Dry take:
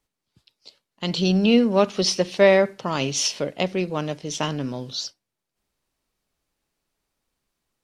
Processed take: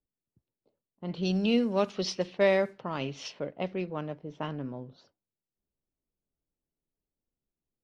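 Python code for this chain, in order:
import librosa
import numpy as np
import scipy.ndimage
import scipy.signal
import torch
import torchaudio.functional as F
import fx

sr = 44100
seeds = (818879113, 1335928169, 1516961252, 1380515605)

y = fx.env_lowpass(x, sr, base_hz=470.0, full_db=-14.0)
y = y * 10.0 ** (-8.5 / 20.0)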